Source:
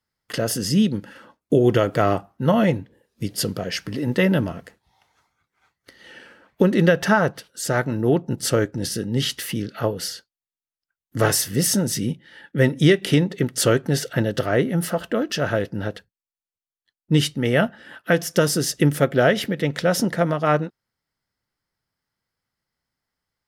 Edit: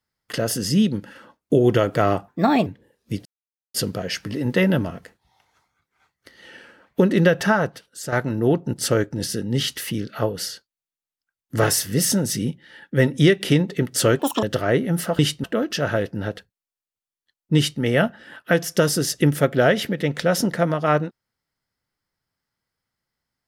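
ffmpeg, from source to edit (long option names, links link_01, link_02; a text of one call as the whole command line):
ffmpeg -i in.wav -filter_complex "[0:a]asplit=9[link_01][link_02][link_03][link_04][link_05][link_06][link_07][link_08][link_09];[link_01]atrim=end=2.284[link_10];[link_02]atrim=start=2.28:end=2.77,asetpts=PTS-STARTPTS,asetrate=56448,aresample=44100,atrim=end_sample=16882,asetpts=PTS-STARTPTS[link_11];[link_03]atrim=start=2.766:end=3.36,asetpts=PTS-STARTPTS,afade=type=out:start_time=0.59:duration=0.004:curve=hsin,apad=pad_dur=0.49[link_12];[link_04]atrim=start=3.36:end=7.74,asetpts=PTS-STARTPTS,afade=type=in:duration=0.004:curve=hsin,afade=type=out:start_time=3.62:duration=0.76:silence=0.421697[link_13];[link_05]atrim=start=7.74:end=13.814,asetpts=PTS-STARTPTS,afade=type=in:duration=0.004:curve=hsin:silence=0.421697[link_14];[link_06]atrim=start=13.81:end=14.27,asetpts=PTS-STARTPTS,asetrate=86436,aresample=44100[link_15];[link_07]atrim=start=14.266:end=15.032[link_16];[link_08]atrim=start=17.148:end=17.402[link_17];[link_09]atrim=start=15.028[link_18];[link_10][link_11]acrossfade=duration=0.004:curve1=hsin:curve2=hsin[link_19];[link_12][link_13][link_14]concat=n=3:v=0:a=1[link_20];[link_19][link_20]acrossfade=duration=0.004:curve1=hsin:curve2=hsin[link_21];[link_21][link_15]acrossfade=duration=0.004:curve1=hsin:curve2=hsin[link_22];[link_22][link_16]acrossfade=duration=0.004:curve1=hsin:curve2=hsin[link_23];[link_23][link_17]acrossfade=duration=0.004:curve1=hsin:curve2=hsin[link_24];[link_24][link_18]acrossfade=duration=0.004:curve1=hsin:curve2=hsin" out.wav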